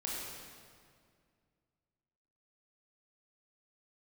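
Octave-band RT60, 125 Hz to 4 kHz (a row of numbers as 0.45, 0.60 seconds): 2.7, 2.6, 2.2, 2.0, 1.8, 1.6 seconds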